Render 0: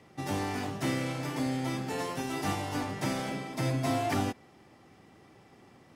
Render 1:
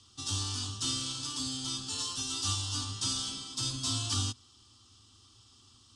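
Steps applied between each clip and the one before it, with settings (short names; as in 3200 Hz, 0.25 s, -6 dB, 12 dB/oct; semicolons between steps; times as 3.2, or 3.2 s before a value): EQ curve 110 Hz 0 dB, 150 Hz -23 dB, 250 Hz -11 dB, 650 Hz -28 dB, 1200 Hz -4 dB, 2100 Hz -25 dB, 3100 Hz +7 dB, 4800 Hz +9 dB, 8800 Hz +9 dB, 13000 Hz -22 dB; gain +2.5 dB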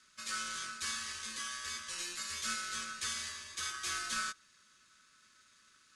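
ring modulator 1400 Hz; gain -2.5 dB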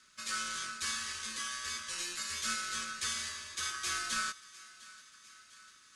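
thinning echo 0.702 s, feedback 63%, high-pass 580 Hz, level -19 dB; gain +2 dB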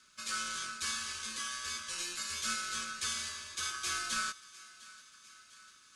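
notch 1900 Hz, Q 9.2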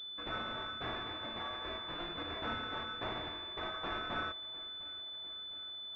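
pulse-width modulation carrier 3500 Hz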